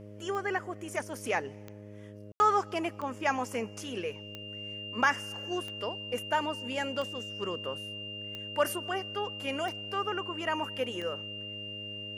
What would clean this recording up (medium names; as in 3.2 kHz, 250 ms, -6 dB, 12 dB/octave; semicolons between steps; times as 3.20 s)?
de-click; de-hum 103.3 Hz, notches 6; band-stop 2.8 kHz, Q 30; room tone fill 2.32–2.40 s